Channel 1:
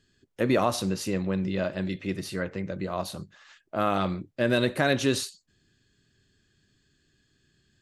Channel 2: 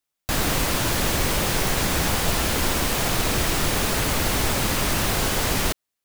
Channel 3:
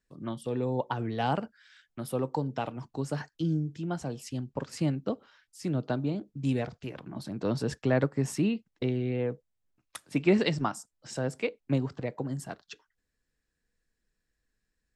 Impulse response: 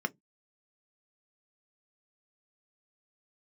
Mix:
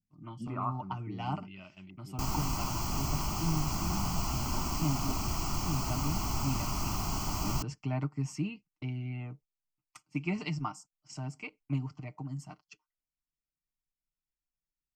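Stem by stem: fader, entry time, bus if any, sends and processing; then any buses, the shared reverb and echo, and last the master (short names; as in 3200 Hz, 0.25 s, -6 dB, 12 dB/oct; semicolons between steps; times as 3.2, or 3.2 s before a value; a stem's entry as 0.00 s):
-10.5 dB, 0.00 s, no send, de-esser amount 95%; stepped low-pass 2.1 Hz 200–4800 Hz; auto duck -8 dB, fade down 1.75 s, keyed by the third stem
-7.5 dB, 1.90 s, no send, EQ curve 1200 Hz 0 dB, 2100 Hz -11 dB, 4100 Hz -2 dB
-5.5 dB, 0.00 s, no send, comb 6.6 ms, depth 57%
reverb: off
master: gate -50 dBFS, range -11 dB; fixed phaser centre 2500 Hz, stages 8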